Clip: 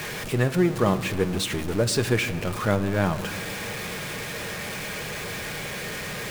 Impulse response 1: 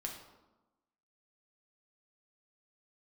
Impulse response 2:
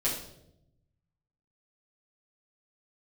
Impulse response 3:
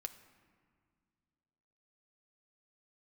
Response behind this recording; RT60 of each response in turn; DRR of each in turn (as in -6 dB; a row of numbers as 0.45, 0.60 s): 3; 1.1, 0.80, 2.0 s; 0.0, -9.5, 7.5 dB